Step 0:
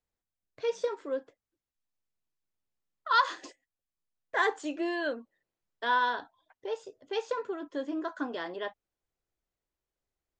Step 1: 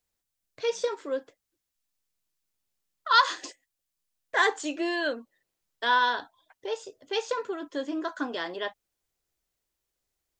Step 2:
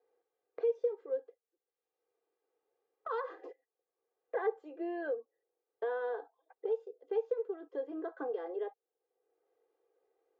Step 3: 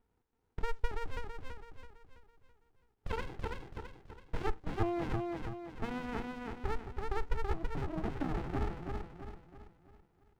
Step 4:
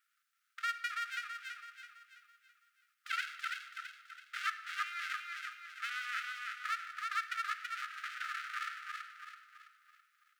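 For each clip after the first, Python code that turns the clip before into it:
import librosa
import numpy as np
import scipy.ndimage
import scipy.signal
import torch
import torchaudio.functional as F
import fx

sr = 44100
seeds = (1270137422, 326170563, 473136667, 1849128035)

y1 = fx.high_shelf(x, sr, hz=2700.0, db=9.5)
y1 = F.gain(torch.from_numpy(y1), 2.0).numpy()
y2 = fx.ladder_bandpass(y1, sr, hz=520.0, resonance_pct=70)
y2 = y2 + 0.75 * np.pad(y2, (int(2.5 * sr / 1000.0), 0))[:len(y2)]
y2 = fx.band_squash(y2, sr, depth_pct=70)
y2 = F.gain(torch.from_numpy(y2), -1.0).numpy()
y3 = fx.echo_feedback(y2, sr, ms=330, feedback_pct=44, wet_db=-3.0)
y3 = fx.running_max(y3, sr, window=65)
y3 = F.gain(torch.from_numpy(y3), 5.5).numpy()
y4 = fx.brickwall_highpass(y3, sr, low_hz=1200.0)
y4 = fx.room_shoebox(y4, sr, seeds[0], volume_m3=2700.0, walls='mixed', distance_m=0.8)
y4 = F.gain(torch.from_numpy(y4), 9.0).numpy()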